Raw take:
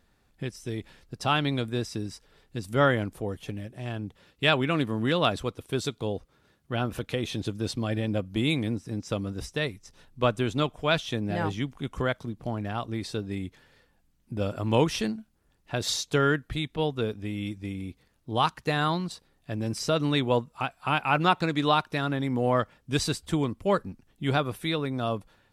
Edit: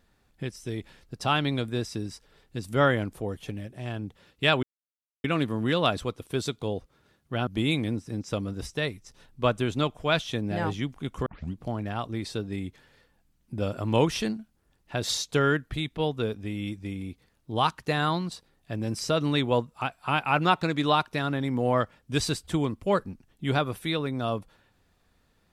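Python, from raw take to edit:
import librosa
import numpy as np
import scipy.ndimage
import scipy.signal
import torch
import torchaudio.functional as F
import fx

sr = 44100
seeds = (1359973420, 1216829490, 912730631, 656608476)

y = fx.edit(x, sr, fx.insert_silence(at_s=4.63, length_s=0.61),
    fx.cut(start_s=6.86, length_s=1.4),
    fx.tape_start(start_s=12.05, length_s=0.3), tone=tone)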